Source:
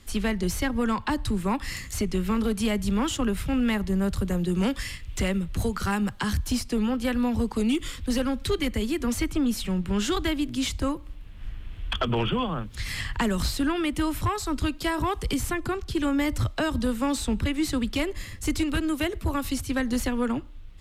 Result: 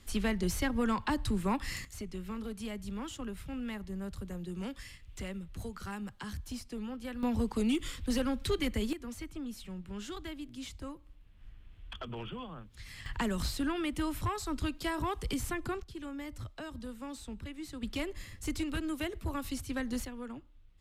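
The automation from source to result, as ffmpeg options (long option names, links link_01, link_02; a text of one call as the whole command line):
ffmpeg -i in.wav -af "asetnsamples=nb_out_samples=441:pad=0,asendcmd='1.85 volume volume -14.5dB;7.23 volume volume -5.5dB;8.93 volume volume -16dB;13.06 volume volume -7.5dB;15.83 volume volume -17dB;17.83 volume volume -9dB;20.05 volume volume -16.5dB',volume=-5dB" out.wav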